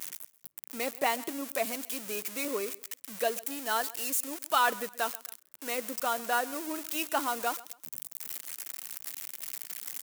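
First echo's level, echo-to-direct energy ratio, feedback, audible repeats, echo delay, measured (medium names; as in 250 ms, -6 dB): -20.5 dB, -20.0 dB, 31%, 2, 133 ms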